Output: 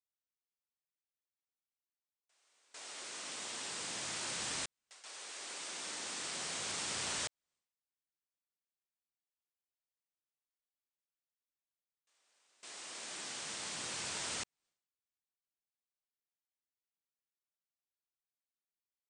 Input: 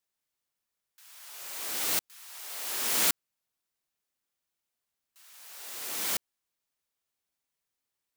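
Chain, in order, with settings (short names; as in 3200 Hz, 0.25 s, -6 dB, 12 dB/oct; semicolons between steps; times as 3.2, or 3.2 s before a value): gate with hold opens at -41 dBFS; speed mistake 78 rpm record played at 33 rpm; compressor 3:1, threshold -41 dBFS, peak gain reduction 15 dB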